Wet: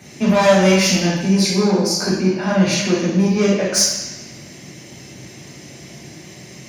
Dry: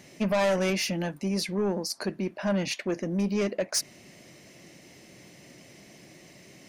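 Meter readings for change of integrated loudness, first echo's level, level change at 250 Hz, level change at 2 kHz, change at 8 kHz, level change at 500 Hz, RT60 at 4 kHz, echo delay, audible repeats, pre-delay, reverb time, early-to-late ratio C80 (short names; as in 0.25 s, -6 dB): +12.5 dB, none, +13.0 dB, +11.5 dB, +14.5 dB, +11.0 dB, 1.2 s, none, none, 3 ms, 1.0 s, 4.0 dB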